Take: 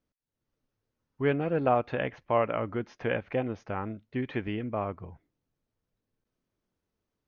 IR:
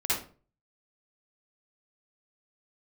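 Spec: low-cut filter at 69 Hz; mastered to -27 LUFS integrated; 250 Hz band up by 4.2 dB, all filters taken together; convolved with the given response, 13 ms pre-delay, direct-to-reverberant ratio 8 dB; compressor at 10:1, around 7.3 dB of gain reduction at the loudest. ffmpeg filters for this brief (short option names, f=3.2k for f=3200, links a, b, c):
-filter_complex "[0:a]highpass=69,equalizer=f=250:t=o:g=5,acompressor=threshold=-25dB:ratio=10,asplit=2[a][b];[1:a]atrim=start_sample=2205,adelay=13[c];[b][c]afir=irnorm=-1:irlink=0,volume=-17dB[d];[a][d]amix=inputs=2:normalize=0,volume=5.5dB"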